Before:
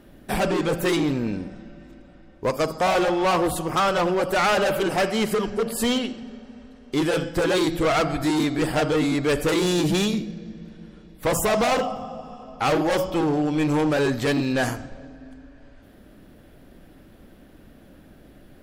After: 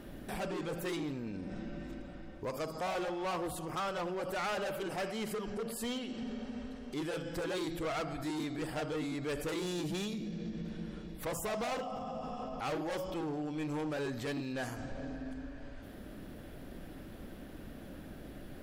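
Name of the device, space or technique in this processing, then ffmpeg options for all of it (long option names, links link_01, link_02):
stacked limiters: -af "alimiter=limit=-22dB:level=0:latency=1:release=370,alimiter=level_in=4.5dB:limit=-24dB:level=0:latency=1:release=193,volume=-4.5dB,alimiter=level_in=10dB:limit=-24dB:level=0:latency=1:release=47,volume=-10dB,volume=1.5dB"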